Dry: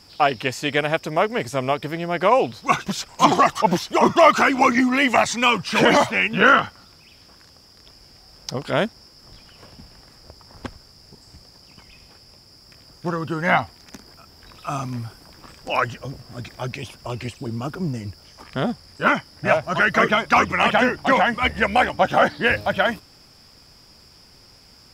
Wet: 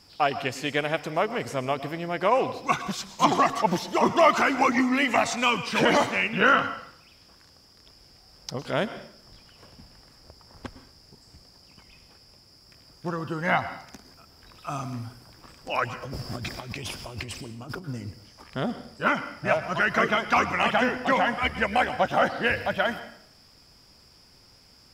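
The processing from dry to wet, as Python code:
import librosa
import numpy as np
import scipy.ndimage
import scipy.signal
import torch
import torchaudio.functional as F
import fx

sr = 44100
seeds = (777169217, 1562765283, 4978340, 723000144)

y = fx.over_compress(x, sr, threshold_db=-37.0, ratio=-1.0, at=(16.02, 17.87), fade=0.02)
y = fx.rev_plate(y, sr, seeds[0], rt60_s=0.63, hf_ratio=0.95, predelay_ms=95, drr_db=12.5)
y = F.gain(torch.from_numpy(y), -5.5).numpy()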